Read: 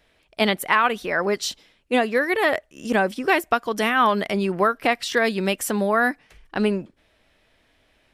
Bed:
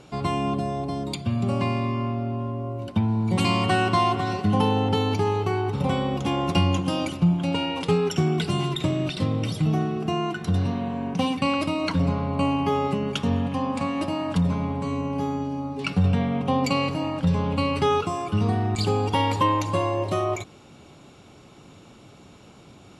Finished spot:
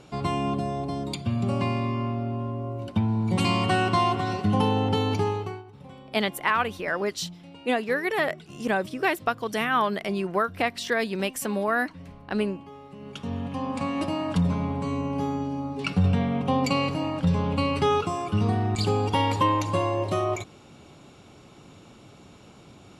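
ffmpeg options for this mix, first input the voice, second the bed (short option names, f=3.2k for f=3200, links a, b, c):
-filter_complex "[0:a]adelay=5750,volume=-5dB[a];[1:a]volume=19dB,afade=t=out:st=5.22:d=0.42:silence=0.1,afade=t=in:st=12.9:d=1.09:silence=0.0944061[b];[a][b]amix=inputs=2:normalize=0"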